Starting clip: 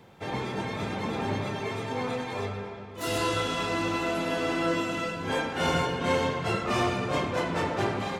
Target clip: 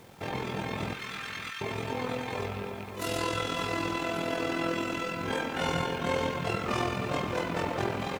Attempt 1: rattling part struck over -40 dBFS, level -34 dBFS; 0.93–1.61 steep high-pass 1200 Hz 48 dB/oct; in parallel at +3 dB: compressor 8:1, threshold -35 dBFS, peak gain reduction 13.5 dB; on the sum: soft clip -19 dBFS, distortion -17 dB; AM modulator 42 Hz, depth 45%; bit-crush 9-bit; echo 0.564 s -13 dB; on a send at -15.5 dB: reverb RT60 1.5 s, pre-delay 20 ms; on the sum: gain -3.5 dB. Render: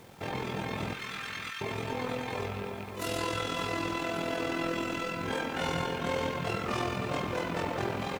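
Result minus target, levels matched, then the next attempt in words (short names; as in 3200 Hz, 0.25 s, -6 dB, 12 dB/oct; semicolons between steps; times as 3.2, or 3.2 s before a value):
soft clip: distortion +19 dB
rattling part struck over -40 dBFS, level -34 dBFS; 0.93–1.61 steep high-pass 1200 Hz 48 dB/oct; in parallel at +3 dB: compressor 8:1, threshold -35 dBFS, peak gain reduction 13.5 dB; on the sum: soft clip -7.5 dBFS, distortion -36 dB; AM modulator 42 Hz, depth 45%; bit-crush 9-bit; echo 0.564 s -13 dB; on a send at -15.5 dB: reverb RT60 1.5 s, pre-delay 20 ms; on the sum: gain -3.5 dB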